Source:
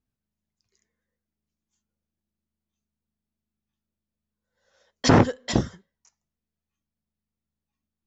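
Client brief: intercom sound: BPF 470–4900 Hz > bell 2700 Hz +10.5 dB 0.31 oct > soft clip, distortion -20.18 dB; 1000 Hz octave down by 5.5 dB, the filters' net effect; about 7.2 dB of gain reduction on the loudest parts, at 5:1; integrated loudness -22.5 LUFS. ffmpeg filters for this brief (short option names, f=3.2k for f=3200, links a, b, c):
-af "equalizer=f=1k:t=o:g=-7,acompressor=threshold=-20dB:ratio=5,highpass=470,lowpass=4.9k,equalizer=f=2.7k:t=o:w=0.31:g=10.5,asoftclip=threshold=-18.5dB,volume=10dB"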